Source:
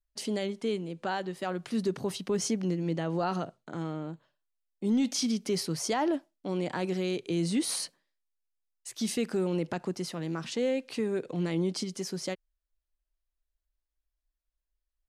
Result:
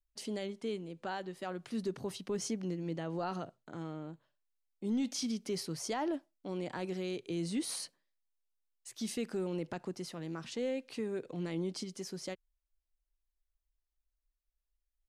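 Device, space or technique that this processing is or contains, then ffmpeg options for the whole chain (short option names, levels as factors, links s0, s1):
low shelf boost with a cut just above: -af "lowshelf=f=110:g=7,equalizer=f=170:t=o:w=0.62:g=-3,volume=0.447"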